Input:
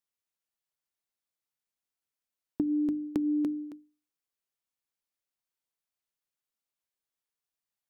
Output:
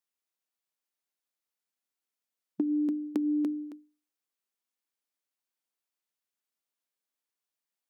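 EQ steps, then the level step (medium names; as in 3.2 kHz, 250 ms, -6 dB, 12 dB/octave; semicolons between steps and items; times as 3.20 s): brick-wall FIR high-pass 180 Hz; 0.0 dB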